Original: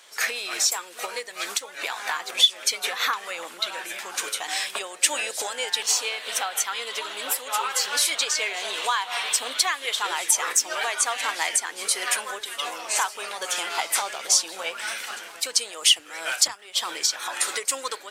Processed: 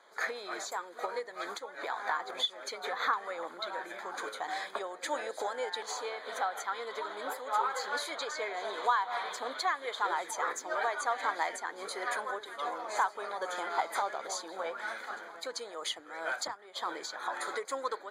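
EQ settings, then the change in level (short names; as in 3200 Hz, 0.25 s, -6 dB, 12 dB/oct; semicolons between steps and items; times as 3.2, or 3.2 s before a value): running mean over 16 samples; low shelf 140 Hz -10 dB; 0.0 dB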